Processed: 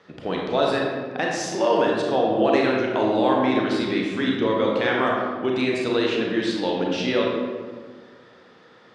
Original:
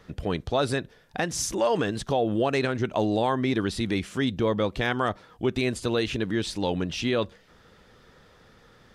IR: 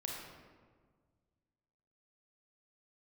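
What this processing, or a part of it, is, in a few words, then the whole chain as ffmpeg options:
supermarket ceiling speaker: -filter_complex "[0:a]highpass=240,lowpass=5000[s0];[1:a]atrim=start_sample=2205[s1];[s0][s1]afir=irnorm=-1:irlink=0,volume=1.78"

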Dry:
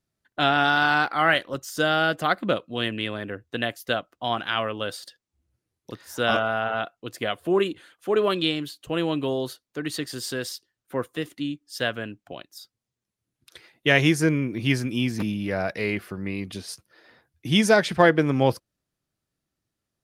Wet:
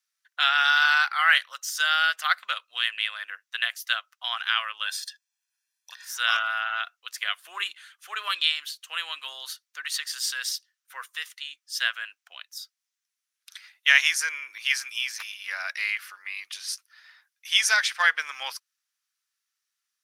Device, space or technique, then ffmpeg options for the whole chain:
headphones lying on a table: -filter_complex "[0:a]asettb=1/sr,asplit=3[s0][s1][s2];[s0]atrim=end=4.864[s3];[s1]atrim=start=4.86:end=6.05,asetpts=PTS-STARTPTS,afade=t=in:d=0.004:c=qsin,afade=t=out:st=1.186:d=0.004:c=qsin,aecho=1:1:1.2:0.83,atrim=end_sample=52479[s4];[s2]atrim=start=6.046[s5];[s3][s4]acrossfade=d=0.004:c1=hsin:c2=qsin[s6];[s6][s5]acrossfade=d=0.004:c1=qsin:c2=hsin,highpass=f=1300:w=0.5412,highpass=f=1300:w=1.3066,equalizer=f=5800:t=o:w=0.28:g=5.5,volume=1.5"

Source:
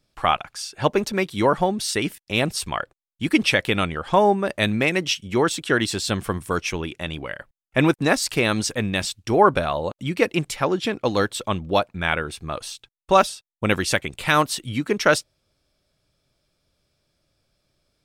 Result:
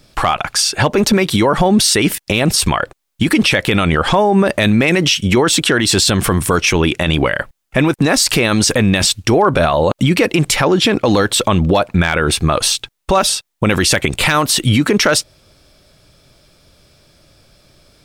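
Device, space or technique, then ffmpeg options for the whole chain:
loud club master: -af "acompressor=threshold=0.1:ratio=2.5,asoftclip=type=hard:threshold=0.266,alimiter=level_in=15:limit=0.891:release=50:level=0:latency=1,volume=0.708"

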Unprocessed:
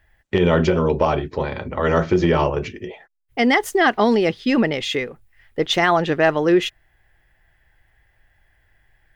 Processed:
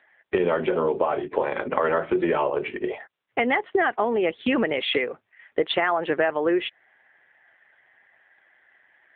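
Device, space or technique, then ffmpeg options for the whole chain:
voicemail: -af "highpass=370,lowpass=3000,acompressor=threshold=0.0447:ratio=8,volume=2.66" -ar 8000 -c:a libopencore_amrnb -b:a 7400

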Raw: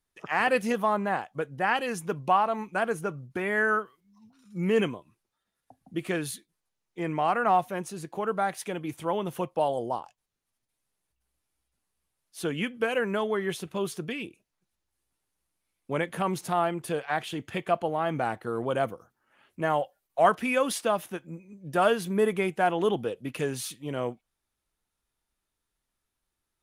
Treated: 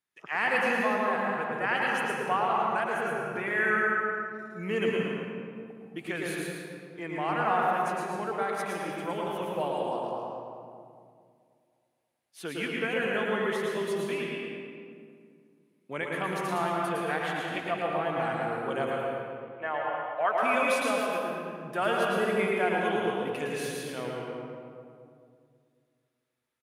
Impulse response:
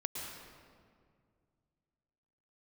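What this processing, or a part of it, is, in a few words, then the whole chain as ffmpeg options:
PA in a hall: -filter_complex "[0:a]asettb=1/sr,asplit=3[s0][s1][s2];[s0]atrim=end=18.944[s3];[s1]atrim=start=18.94:end=20.37,asetpts=PTS-STARTPTS,afade=t=in:d=0.004:c=qsin,afade=t=out:st=1.426:d=0.004:c=qsin,acrossover=split=400 3300:gain=0.158 1 0.0708[s4][s5][s6];[s4][s5][s6]amix=inputs=3:normalize=0[s7];[s2]atrim=start=20.366[s8];[s3][s7]acrossfade=d=0.004:c1=hsin:c2=qsin[s9];[s9][s8]acrossfade=d=0.004:c1=qsin:c2=hsin,highpass=140,equalizer=f=2100:t=o:w=1.5:g=7,aecho=1:1:111:0.531,asplit=2[s10][s11];[s11]adelay=219,lowpass=f=1600:p=1,volume=0.422,asplit=2[s12][s13];[s13]adelay=219,lowpass=f=1600:p=1,volume=0.4,asplit=2[s14][s15];[s15]adelay=219,lowpass=f=1600:p=1,volume=0.4,asplit=2[s16][s17];[s17]adelay=219,lowpass=f=1600:p=1,volume=0.4,asplit=2[s18][s19];[s19]adelay=219,lowpass=f=1600:p=1,volume=0.4[s20];[s10][s12][s14][s16][s18][s20]amix=inputs=6:normalize=0[s21];[1:a]atrim=start_sample=2205[s22];[s21][s22]afir=irnorm=-1:irlink=0,volume=0.501"

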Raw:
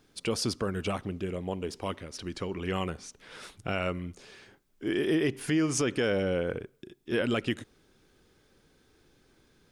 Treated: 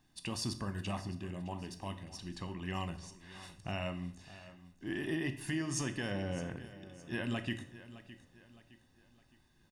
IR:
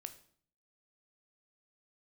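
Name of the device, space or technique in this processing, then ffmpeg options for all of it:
microphone above a desk: -filter_complex "[0:a]asettb=1/sr,asplit=3[s0][s1][s2];[s0]atrim=end=1.844[s3];[s1]atrim=start=1.84:end=2.36,asetpts=PTS-STARTPTS,afade=t=in:d=0.004:c=qsin,afade=t=out:st=0.516:d=0.004:c=qsin,equalizer=f=1300:t=o:w=1.1:g=-5.5[s4];[s2]atrim=start=2.356[s5];[s3][s4]acrossfade=d=0.004:c1=hsin:c2=qsin[s6];[s6][s5]acrossfade=d=0.004:c1=qsin:c2=hsin,aecho=1:1:1.1:0.74,aecho=1:1:613|1226|1839|2452:0.158|0.0634|0.0254|0.0101[s7];[1:a]atrim=start_sample=2205[s8];[s7][s8]afir=irnorm=-1:irlink=0,volume=0.668"

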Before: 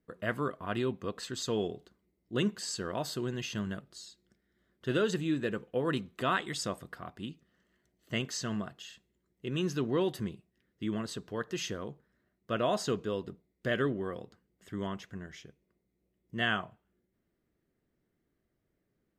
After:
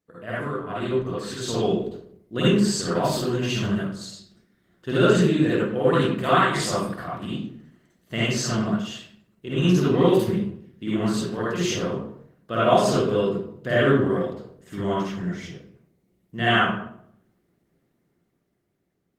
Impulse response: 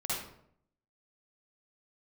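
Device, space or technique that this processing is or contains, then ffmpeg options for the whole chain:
far-field microphone of a smart speaker: -filter_complex "[1:a]atrim=start_sample=2205[s0];[0:a][s0]afir=irnorm=-1:irlink=0,highpass=90,dynaudnorm=f=410:g=7:m=2.37" -ar 48000 -c:a libopus -b:a 20k

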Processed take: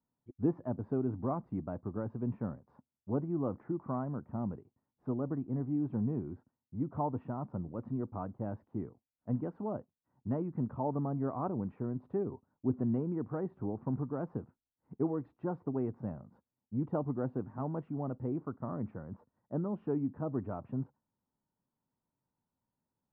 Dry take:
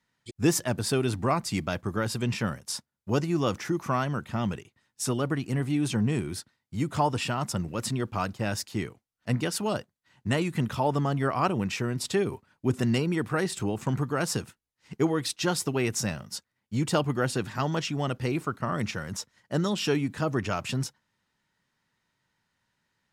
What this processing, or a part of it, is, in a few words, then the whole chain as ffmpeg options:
under water: -af "lowpass=f=1000:w=0.5412,lowpass=f=1000:w=1.3066,equalizer=f=260:t=o:w=0.33:g=6,volume=0.376"

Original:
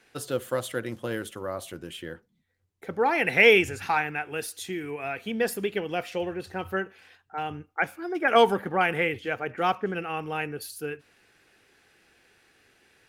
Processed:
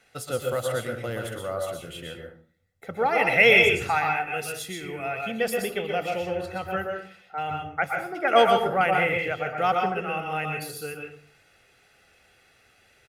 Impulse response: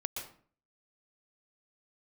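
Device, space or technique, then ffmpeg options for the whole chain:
microphone above a desk: -filter_complex "[0:a]aecho=1:1:1.5:0.52[s0];[1:a]atrim=start_sample=2205[s1];[s0][s1]afir=irnorm=-1:irlink=0"

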